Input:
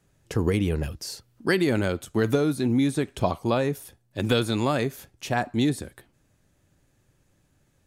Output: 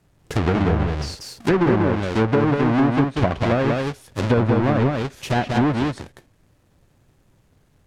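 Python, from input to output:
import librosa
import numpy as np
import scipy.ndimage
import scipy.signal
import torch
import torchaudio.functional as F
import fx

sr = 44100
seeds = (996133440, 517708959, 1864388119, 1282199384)

y = fx.halfwave_hold(x, sr)
y = y + 10.0 ** (-3.5 / 20.0) * np.pad(y, (int(190 * sr / 1000.0), 0))[:len(y)]
y = fx.env_lowpass_down(y, sr, base_hz=1500.0, full_db=-13.5)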